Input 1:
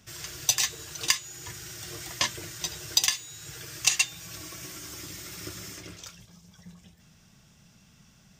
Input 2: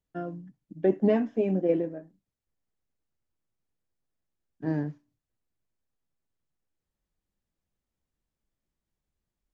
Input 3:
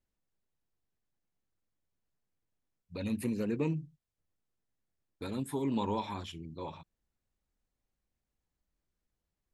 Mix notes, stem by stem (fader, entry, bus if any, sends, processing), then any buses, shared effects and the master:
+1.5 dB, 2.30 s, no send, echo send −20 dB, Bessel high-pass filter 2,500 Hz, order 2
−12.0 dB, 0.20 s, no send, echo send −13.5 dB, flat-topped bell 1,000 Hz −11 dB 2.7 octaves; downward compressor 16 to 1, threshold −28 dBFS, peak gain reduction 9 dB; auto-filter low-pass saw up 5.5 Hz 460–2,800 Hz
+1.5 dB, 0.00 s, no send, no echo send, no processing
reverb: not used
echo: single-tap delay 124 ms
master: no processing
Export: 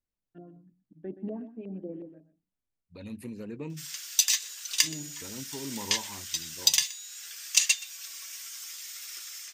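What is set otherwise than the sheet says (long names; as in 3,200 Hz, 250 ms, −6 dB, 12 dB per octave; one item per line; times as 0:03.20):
stem 1: entry 2.30 s → 3.70 s
stem 2: missing downward compressor 16 to 1, threshold −28 dBFS, peak gain reduction 9 dB
stem 3 +1.5 dB → −6.5 dB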